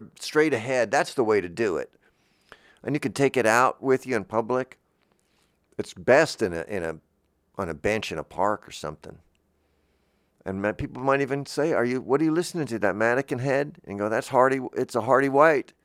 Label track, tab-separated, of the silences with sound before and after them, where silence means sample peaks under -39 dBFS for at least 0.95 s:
4.730000	5.790000	silence
9.160000	10.460000	silence